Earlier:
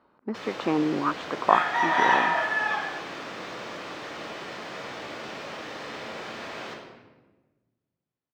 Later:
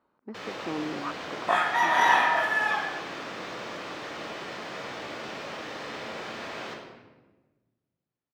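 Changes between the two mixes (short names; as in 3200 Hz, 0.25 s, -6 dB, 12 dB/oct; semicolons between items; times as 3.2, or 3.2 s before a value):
speech -9.0 dB; second sound: remove air absorption 80 m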